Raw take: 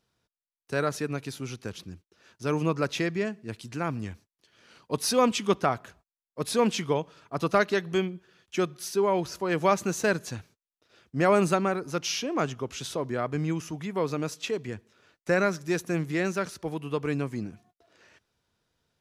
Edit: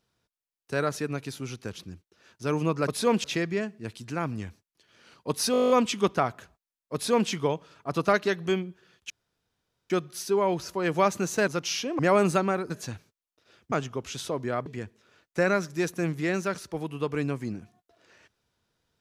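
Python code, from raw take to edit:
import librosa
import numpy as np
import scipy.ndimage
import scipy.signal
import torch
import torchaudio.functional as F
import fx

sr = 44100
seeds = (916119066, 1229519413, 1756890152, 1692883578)

y = fx.edit(x, sr, fx.stutter(start_s=5.16, slice_s=0.02, count=10),
    fx.duplicate(start_s=6.4, length_s=0.36, to_s=2.88),
    fx.insert_room_tone(at_s=8.56, length_s=0.8),
    fx.swap(start_s=10.14, length_s=1.02, other_s=11.87, other_length_s=0.51),
    fx.cut(start_s=13.32, length_s=1.25), tone=tone)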